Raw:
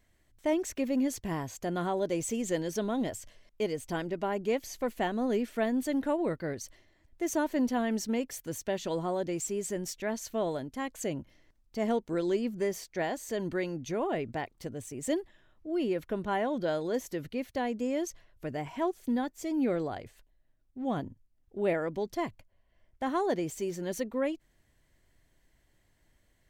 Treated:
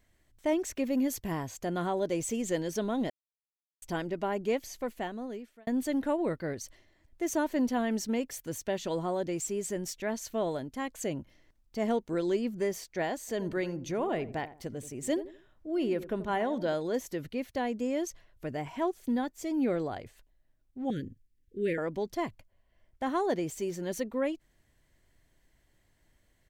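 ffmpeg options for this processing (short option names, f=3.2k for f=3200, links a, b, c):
-filter_complex "[0:a]asettb=1/sr,asplit=3[a][b][c];[a]atrim=end=0.904[d];[b]atrim=start=0.9:end=1.32,asetpts=PTS-STARTPTS,afade=t=in:d=0.004:c=qsin,afade=t=out:st=0.416:d=0.004:c=qsin,equalizer=f=13k:t=o:w=0.23:g=12[e];[c]atrim=start=1.316[f];[d][e]acrossfade=d=0.004:c1=hsin:c2=qsin[g];[g][f]acrossfade=d=0.004:c1=qsin:c2=hsin,asplit=3[h][i][j];[h]afade=t=out:st=13.27:d=0.02[k];[i]asplit=2[l][m];[m]adelay=84,lowpass=f=850:p=1,volume=-12dB,asplit=2[n][o];[o]adelay=84,lowpass=f=850:p=1,volume=0.34,asplit=2[p][q];[q]adelay=84,lowpass=f=850:p=1,volume=0.34[r];[l][n][p][r]amix=inputs=4:normalize=0,afade=t=in:st=13.27:d=0.02,afade=t=out:st=16.73:d=0.02[s];[j]afade=t=in:st=16.73:d=0.02[t];[k][s][t]amix=inputs=3:normalize=0,asettb=1/sr,asplit=3[u][v][w];[u]atrim=end=20.904[x];[v]atrim=start=20.9:end=21.78,asetpts=PTS-STARTPTS,afade=t=in:d=0.004:c=qsin,afade=t=out:st=0.876:d=0.004:c=qsin,asuperstop=centerf=890:order=12:qfactor=0.87[y];[w]atrim=start=21.776[z];[x][y]acrossfade=d=0.004:c1=hsin:c2=qsin[aa];[aa][z]acrossfade=d=0.004:c1=qsin:c2=hsin,asplit=4[ab][ac][ad][ae];[ab]atrim=end=3.1,asetpts=PTS-STARTPTS,afade=t=out:st=3.096:d=0.004:c=hsin[af];[ac]atrim=start=3.1:end=3.82,asetpts=PTS-STARTPTS,volume=0[ag];[ad]atrim=start=3.82:end=5.67,asetpts=PTS-STARTPTS,afade=t=in:d=0.004:c=hsin,afade=t=out:st=0.7:d=1.15[ah];[ae]atrim=start=5.67,asetpts=PTS-STARTPTS,afade=t=in:d=0.004:c=hsin[ai];[af][ag][ah][ai]concat=n=4:v=0:a=1"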